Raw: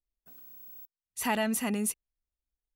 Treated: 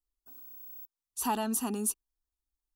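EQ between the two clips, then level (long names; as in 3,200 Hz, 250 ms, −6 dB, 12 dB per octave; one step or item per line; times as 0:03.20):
phaser with its sweep stopped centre 560 Hz, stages 6
+1.5 dB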